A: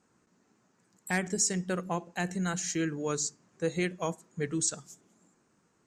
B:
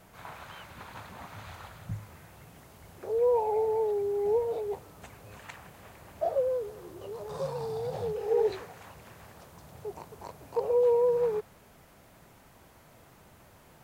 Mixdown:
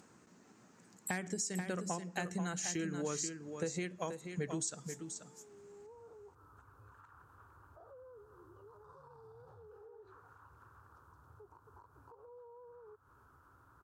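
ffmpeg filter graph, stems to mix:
ffmpeg -i stem1.wav -i stem2.wav -filter_complex "[0:a]acompressor=threshold=-37dB:ratio=12,volume=2.5dB,asplit=3[link_01][link_02][link_03];[link_02]volume=-7.5dB[link_04];[1:a]firequalizer=gain_entry='entry(100,0);entry(190,-20);entry(270,-6);entry(430,-8);entry(640,-19);entry(960,-1);entry(1400,5);entry(2000,-24);entry(2900,-21);entry(5600,-17)':delay=0.05:min_phase=1,acompressor=threshold=-43dB:ratio=2,alimiter=level_in=19dB:limit=-24dB:level=0:latency=1:release=172,volume=-19dB,adelay=1550,volume=-6.5dB[link_05];[link_03]apad=whole_len=682846[link_06];[link_05][link_06]sidechaincompress=threshold=-54dB:ratio=8:attack=16:release=797[link_07];[link_04]aecho=0:1:483:1[link_08];[link_01][link_07][link_08]amix=inputs=3:normalize=0,acompressor=mode=upward:threshold=-56dB:ratio=2.5,highpass=63" out.wav

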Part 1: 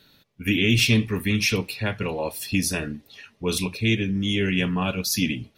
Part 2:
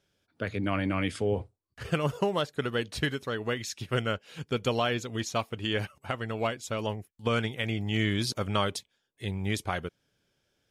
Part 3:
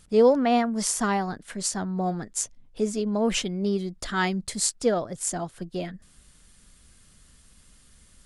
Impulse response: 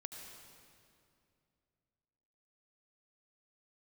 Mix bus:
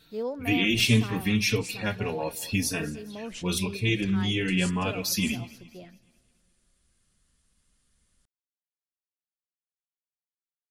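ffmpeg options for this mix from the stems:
-filter_complex "[0:a]asplit=2[link_01][link_02];[link_02]adelay=4,afreqshift=1.8[link_03];[link_01][link_03]amix=inputs=2:normalize=1,volume=0dB,asplit=2[link_04][link_05];[link_05]volume=-20dB[link_06];[2:a]volume=-15dB,asplit=2[link_07][link_08];[link_08]volume=-16.5dB[link_09];[3:a]atrim=start_sample=2205[link_10];[link_09][link_10]afir=irnorm=-1:irlink=0[link_11];[link_06]aecho=0:1:211|422|633|844|1055|1266:1|0.44|0.194|0.0852|0.0375|0.0165[link_12];[link_04][link_07][link_11][link_12]amix=inputs=4:normalize=0"

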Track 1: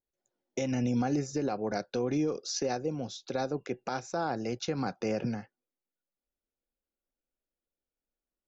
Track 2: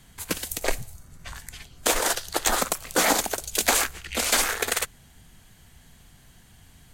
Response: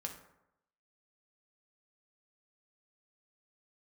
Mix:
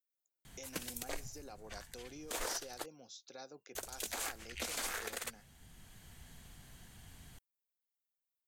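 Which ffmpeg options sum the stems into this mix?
-filter_complex "[0:a]aemphasis=mode=production:type=riaa,volume=-17dB,asplit=2[link_01][link_02];[1:a]adelay=450,volume=-3dB,asplit=3[link_03][link_04][link_05];[link_03]atrim=end=2.86,asetpts=PTS-STARTPTS,afade=type=out:start_time=2.856:duration=0.004:curve=hsin[link_06];[link_04]atrim=start=2.86:end=3.75,asetpts=PTS-STARTPTS,volume=0[link_07];[link_05]atrim=start=3.75,asetpts=PTS-STARTPTS,afade=type=in:duration=0.004:curve=hsin[link_08];[link_06][link_07][link_08]concat=n=3:v=0:a=1[link_09];[link_02]apad=whole_len=325738[link_10];[link_09][link_10]sidechaincompress=threshold=-53dB:ratio=12:attack=12:release=1250[link_11];[link_01][link_11]amix=inputs=2:normalize=0,alimiter=level_in=2.5dB:limit=-24dB:level=0:latency=1:release=183,volume=-2.5dB"

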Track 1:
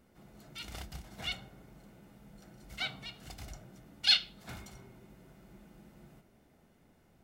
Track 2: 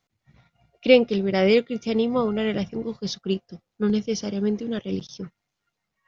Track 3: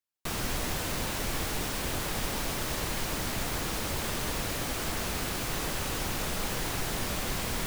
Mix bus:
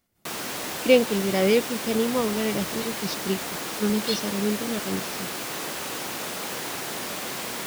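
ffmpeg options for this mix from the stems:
ffmpeg -i stem1.wav -i stem2.wav -i stem3.wav -filter_complex "[0:a]crystalizer=i=3.5:c=0,volume=-13.5dB[link_01];[1:a]volume=-2dB[link_02];[2:a]highpass=240,volume=2dB[link_03];[link_01][link_02][link_03]amix=inputs=3:normalize=0" out.wav

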